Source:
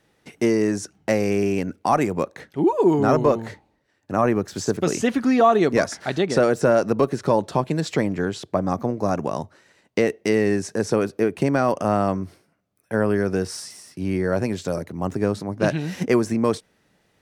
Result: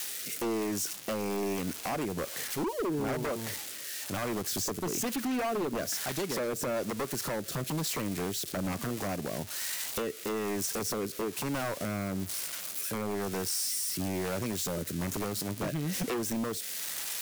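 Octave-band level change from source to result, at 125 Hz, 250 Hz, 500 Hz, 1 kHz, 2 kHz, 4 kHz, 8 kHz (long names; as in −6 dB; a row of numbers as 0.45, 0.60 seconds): −10.5, −12.0, −13.5, −13.0, −9.0, −0.5, +3.0 decibels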